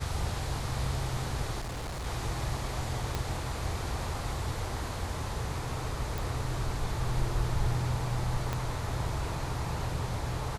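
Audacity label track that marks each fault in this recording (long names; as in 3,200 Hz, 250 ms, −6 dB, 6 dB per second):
1.600000	2.070000	clipping −33.5 dBFS
3.150000	3.150000	click −17 dBFS
6.180000	6.180000	click
8.530000	8.530000	click −17 dBFS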